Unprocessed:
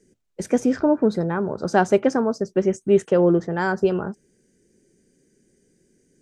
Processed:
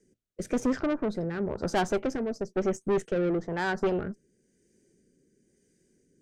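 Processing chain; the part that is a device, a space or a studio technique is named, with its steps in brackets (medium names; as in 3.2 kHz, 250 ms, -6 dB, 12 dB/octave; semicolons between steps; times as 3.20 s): overdriven rotary cabinet (valve stage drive 21 dB, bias 0.65; rotary cabinet horn 1 Hz)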